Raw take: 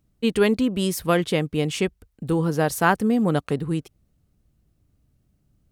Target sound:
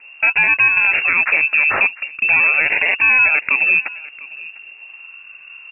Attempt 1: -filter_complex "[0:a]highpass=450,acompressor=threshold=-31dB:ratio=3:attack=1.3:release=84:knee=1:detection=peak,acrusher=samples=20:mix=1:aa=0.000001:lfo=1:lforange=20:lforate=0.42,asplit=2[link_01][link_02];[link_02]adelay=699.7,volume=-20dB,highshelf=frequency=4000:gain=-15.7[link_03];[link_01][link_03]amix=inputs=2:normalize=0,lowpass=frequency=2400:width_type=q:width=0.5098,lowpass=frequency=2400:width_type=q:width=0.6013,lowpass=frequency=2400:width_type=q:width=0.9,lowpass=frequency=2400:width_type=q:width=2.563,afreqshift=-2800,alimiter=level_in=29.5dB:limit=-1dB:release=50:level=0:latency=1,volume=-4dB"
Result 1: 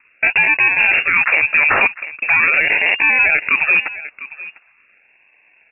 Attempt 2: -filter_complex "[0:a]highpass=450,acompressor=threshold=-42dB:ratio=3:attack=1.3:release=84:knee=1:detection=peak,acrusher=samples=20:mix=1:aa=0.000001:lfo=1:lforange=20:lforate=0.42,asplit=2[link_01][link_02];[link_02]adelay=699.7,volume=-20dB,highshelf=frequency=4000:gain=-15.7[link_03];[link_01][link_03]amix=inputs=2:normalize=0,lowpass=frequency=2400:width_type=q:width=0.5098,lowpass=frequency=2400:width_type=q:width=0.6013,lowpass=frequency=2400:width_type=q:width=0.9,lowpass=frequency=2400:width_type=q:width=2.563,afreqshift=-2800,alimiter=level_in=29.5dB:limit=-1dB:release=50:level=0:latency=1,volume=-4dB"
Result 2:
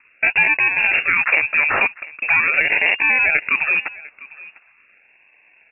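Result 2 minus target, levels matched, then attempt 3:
500 Hz band +3.5 dB
-filter_complex "[0:a]acompressor=threshold=-42dB:ratio=3:attack=1.3:release=84:knee=1:detection=peak,acrusher=samples=20:mix=1:aa=0.000001:lfo=1:lforange=20:lforate=0.42,asplit=2[link_01][link_02];[link_02]adelay=699.7,volume=-20dB,highshelf=frequency=4000:gain=-15.7[link_03];[link_01][link_03]amix=inputs=2:normalize=0,lowpass=frequency=2400:width_type=q:width=0.5098,lowpass=frequency=2400:width_type=q:width=0.6013,lowpass=frequency=2400:width_type=q:width=0.9,lowpass=frequency=2400:width_type=q:width=2.563,afreqshift=-2800,alimiter=level_in=29.5dB:limit=-1dB:release=50:level=0:latency=1,volume=-4dB"

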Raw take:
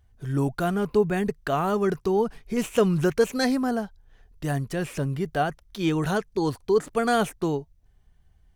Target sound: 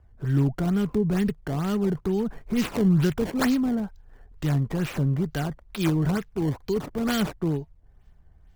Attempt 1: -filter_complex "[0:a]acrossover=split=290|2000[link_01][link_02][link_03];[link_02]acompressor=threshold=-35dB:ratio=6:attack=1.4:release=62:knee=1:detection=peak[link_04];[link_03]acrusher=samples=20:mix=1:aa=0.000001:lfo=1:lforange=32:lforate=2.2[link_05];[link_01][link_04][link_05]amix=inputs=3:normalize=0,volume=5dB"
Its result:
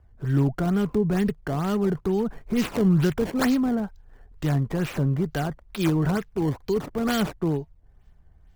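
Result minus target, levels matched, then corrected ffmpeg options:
downward compressor: peak gain reduction −5.5 dB
-filter_complex "[0:a]acrossover=split=290|2000[link_01][link_02][link_03];[link_02]acompressor=threshold=-41.5dB:ratio=6:attack=1.4:release=62:knee=1:detection=peak[link_04];[link_03]acrusher=samples=20:mix=1:aa=0.000001:lfo=1:lforange=32:lforate=2.2[link_05];[link_01][link_04][link_05]amix=inputs=3:normalize=0,volume=5dB"

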